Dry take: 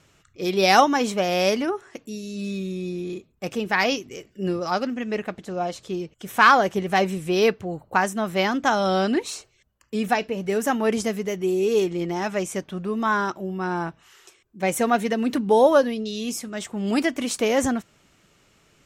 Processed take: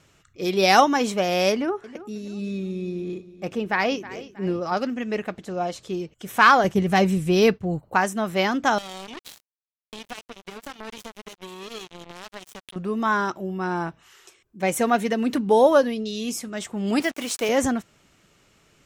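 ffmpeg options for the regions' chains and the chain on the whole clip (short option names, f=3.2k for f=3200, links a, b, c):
-filter_complex "[0:a]asettb=1/sr,asplit=3[a][b][c];[a]atrim=end=1.524[d];[b]atrim=start=1.52:end=4.77,asetpts=PTS-STARTPTS,afade=t=in:d=0.004:c=qsin,afade=t=out:st=3.246:d=0.004:c=qsin,highshelf=f=3.6k:g=-10.5,aecho=1:1:318|636|954:0.15|0.0584|0.0228,atrim=end_sample=143325[e];[c]atrim=start=4.766[f];[d][e]acrossfade=d=0.004:c1=hsin:c2=qsin[g];[g][f]acrossfade=d=0.004:c1=qsin:c2=hsin,asettb=1/sr,asplit=3[h][i][j];[h]atrim=end=6.644[k];[i]atrim=start=6.64:end=7.83,asetpts=PTS-STARTPTS,afade=t=in:d=0.004:c=qsin,afade=t=out:st=1.186:d=0.004:c=qsin,agate=range=-33dB:threshold=-35dB:ratio=3:release=100:detection=peak,bass=f=250:g=9,treble=f=4k:g=2[l];[j]atrim=start=7.826[m];[k][l]acrossfade=d=0.004:c1=hsin:c2=qsin[n];[n][m]acrossfade=d=0.004:c1=qsin:c2=hsin,asettb=1/sr,asplit=3[o][p][q];[o]atrim=end=8.784[r];[p]atrim=start=8.78:end=12.76,asetpts=PTS-STARTPTS,afade=t=in:d=0.004:c=qsin,afade=t=out:st=3.976:d=0.004:c=qsin,equalizer=f=3.3k:w=2.8:g=14,acompressor=threshold=-35dB:ratio=4:attack=3.2:release=140:knee=1:detection=peak,acrusher=bits=4:mix=0:aa=0.5[s];[q]atrim=start=12.756[t];[r][s]acrossfade=d=0.004:c1=hsin:c2=qsin[u];[u][t]acrossfade=d=0.004:c1=qsin:c2=hsin,asettb=1/sr,asplit=3[v][w][x];[v]atrim=end=17.004[y];[w]atrim=start=17:end=17.49,asetpts=PTS-STARTPTS,afade=t=in:d=0.004:c=qsin,afade=t=out:st=0.486:d=0.004:c=qsin,highpass=f=200:p=1,lowshelf=f=310:g=-6,acrusher=bits=5:mix=0:aa=0.5[z];[x]atrim=start=17.486[aa];[y][z]acrossfade=d=0.004:c1=hsin:c2=qsin[ab];[ab][aa]acrossfade=d=0.004:c1=qsin:c2=hsin"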